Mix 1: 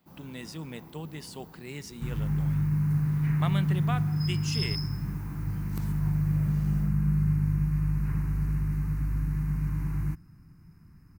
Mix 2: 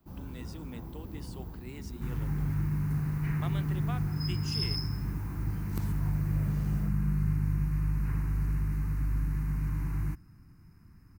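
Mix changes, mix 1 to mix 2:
speech: add four-pole ladder high-pass 210 Hz, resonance 40%
first sound: remove high-pass filter 460 Hz 6 dB per octave
master: add parametric band 160 Hz −6.5 dB 0.41 octaves

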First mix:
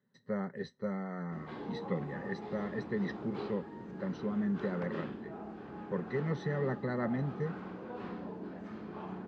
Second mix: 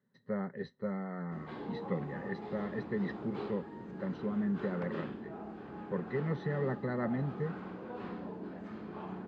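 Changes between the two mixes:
speech: add high-frequency loss of the air 130 metres
master: add parametric band 5,800 Hz −4 dB 0.31 octaves

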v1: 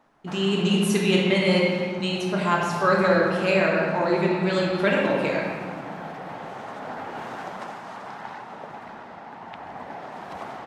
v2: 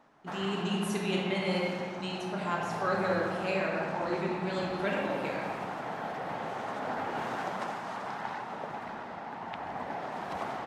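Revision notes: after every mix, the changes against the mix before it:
speech −10.5 dB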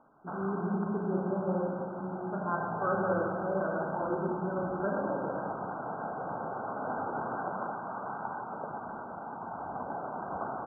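master: add linear-phase brick-wall low-pass 1,600 Hz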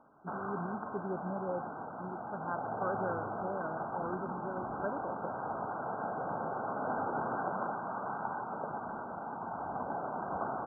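reverb: off

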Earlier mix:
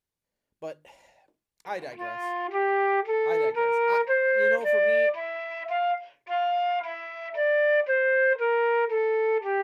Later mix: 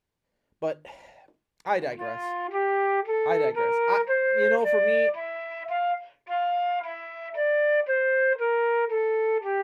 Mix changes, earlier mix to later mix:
speech +8.5 dB
master: add high-shelf EQ 4,800 Hz −11.5 dB

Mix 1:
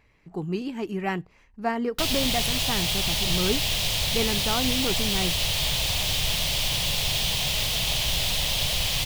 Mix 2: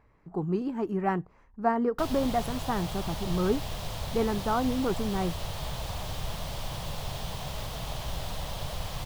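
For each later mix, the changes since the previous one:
background −4.5 dB
master: add high shelf with overshoot 1,800 Hz −11 dB, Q 1.5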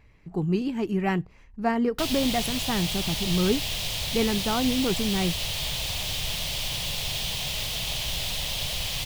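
speech: add low-shelf EQ 230 Hz +8.5 dB
master: add high shelf with overshoot 1,800 Hz +11 dB, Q 1.5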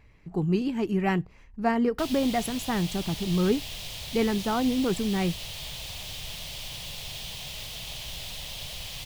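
background −8.0 dB

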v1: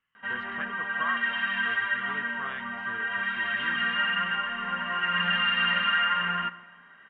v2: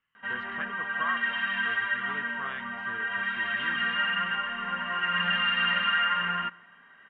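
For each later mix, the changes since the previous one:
background: send −8.5 dB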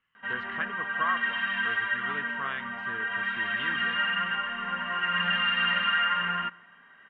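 speech +3.5 dB

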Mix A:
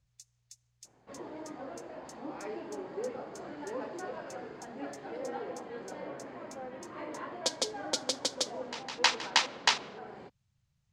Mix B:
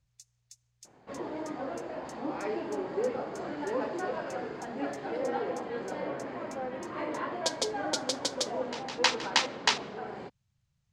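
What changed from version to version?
second sound +6.5 dB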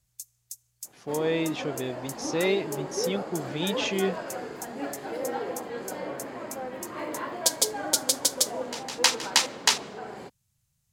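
speech: unmuted
master: remove high-frequency loss of the air 140 metres

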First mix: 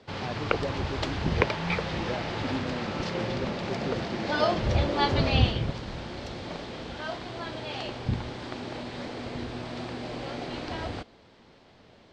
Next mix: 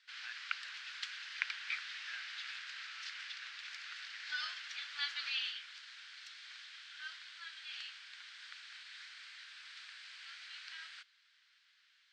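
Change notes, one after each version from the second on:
background −6.5 dB
master: add elliptic high-pass filter 1,500 Hz, stop band 80 dB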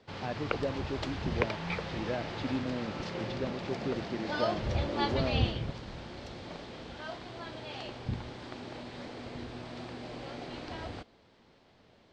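master: remove elliptic high-pass filter 1,500 Hz, stop band 80 dB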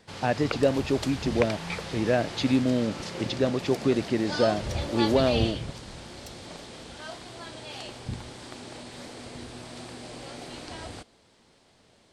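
speech +11.0 dB
master: remove high-frequency loss of the air 170 metres

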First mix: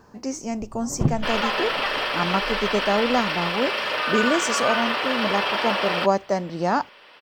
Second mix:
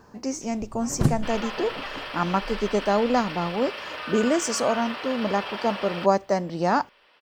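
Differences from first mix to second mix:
first sound: remove Savitzky-Golay smoothing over 65 samples
second sound −10.0 dB

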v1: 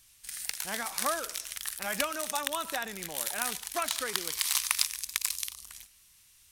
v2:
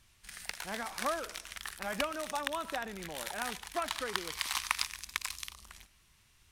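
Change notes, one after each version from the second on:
background +6.0 dB
master: add low-pass filter 1,200 Hz 6 dB per octave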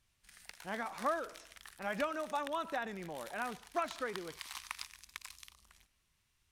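background −11.5 dB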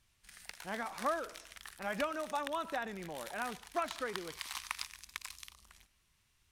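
background +3.5 dB

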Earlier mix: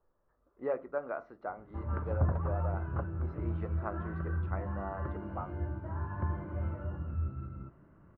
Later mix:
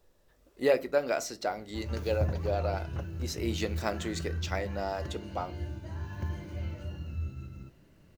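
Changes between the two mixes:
background −11.0 dB
master: remove transistor ladder low-pass 1,400 Hz, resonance 55%

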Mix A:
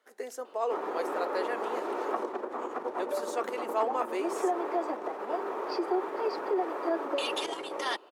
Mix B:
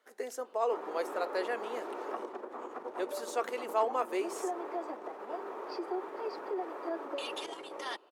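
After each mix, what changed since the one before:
background −7.0 dB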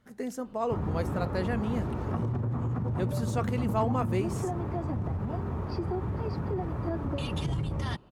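master: remove Butterworth high-pass 360 Hz 36 dB per octave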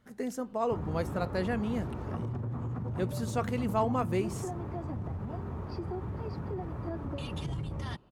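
background −5.0 dB

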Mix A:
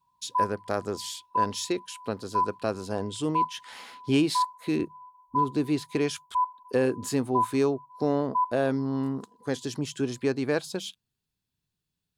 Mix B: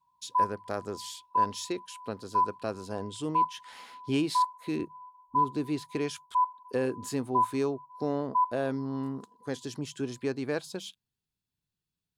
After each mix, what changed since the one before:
speech −5.0 dB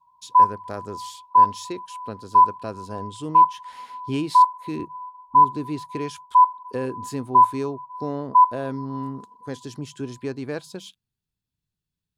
background +11.5 dB
master: add low-shelf EQ 160 Hz +7.5 dB

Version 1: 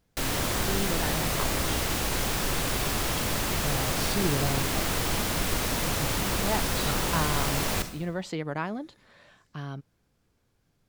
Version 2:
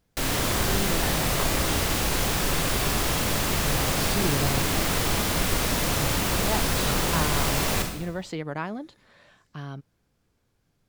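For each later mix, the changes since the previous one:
background: send +8.0 dB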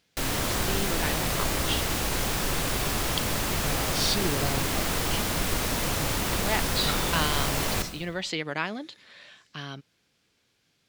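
speech: add meter weighting curve D
background: send −6.5 dB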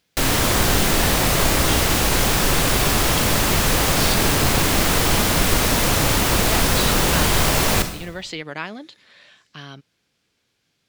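background +9.5 dB

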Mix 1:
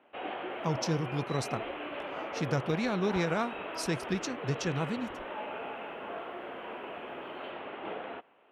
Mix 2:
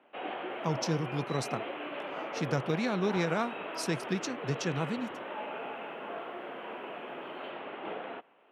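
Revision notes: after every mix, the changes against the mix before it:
master: add high-pass filter 120 Hz 24 dB per octave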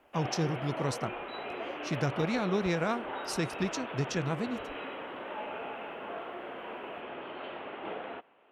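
speech: entry −0.50 s
master: remove high-pass filter 120 Hz 24 dB per octave

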